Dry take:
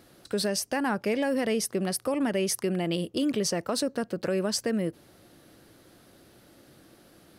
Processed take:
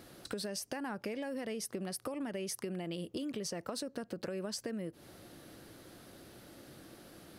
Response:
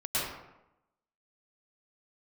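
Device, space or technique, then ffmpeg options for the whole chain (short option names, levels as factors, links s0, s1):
serial compression, peaks first: -af "acompressor=threshold=0.0224:ratio=6,acompressor=threshold=0.00891:ratio=2,volume=1.19"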